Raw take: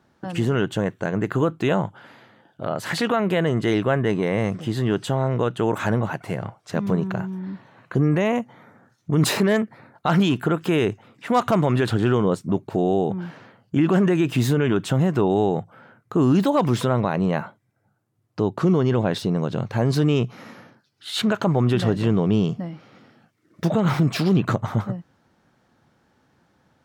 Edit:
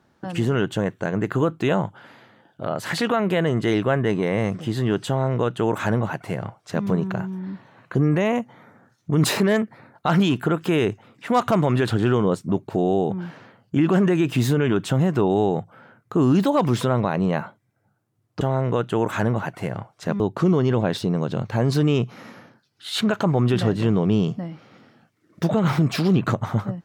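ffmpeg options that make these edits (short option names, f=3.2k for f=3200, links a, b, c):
-filter_complex "[0:a]asplit=3[a][b][c];[a]atrim=end=18.412[d];[b]atrim=start=5.078:end=6.872[e];[c]atrim=start=18.408[f];[d][e]acrossfade=d=0.004:c1=hsin:c2=hsin[g];[g][f]acrossfade=d=0.004:c1=hsin:c2=hsin"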